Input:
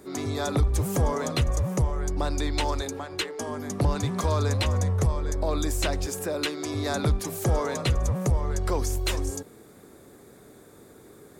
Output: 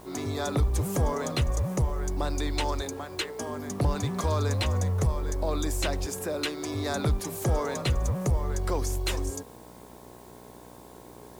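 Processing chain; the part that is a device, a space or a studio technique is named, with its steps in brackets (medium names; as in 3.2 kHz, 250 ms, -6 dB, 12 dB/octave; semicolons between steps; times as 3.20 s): video cassette with head-switching buzz (mains buzz 60 Hz, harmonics 18, -48 dBFS -1 dB/octave; white noise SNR 31 dB); trim -2 dB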